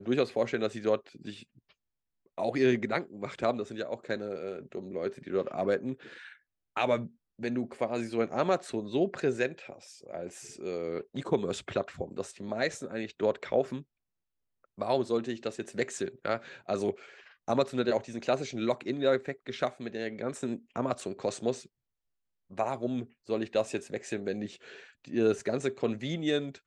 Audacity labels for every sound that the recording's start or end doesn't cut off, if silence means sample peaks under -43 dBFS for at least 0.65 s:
2.380000	13.820000	sound
14.780000	21.660000	sound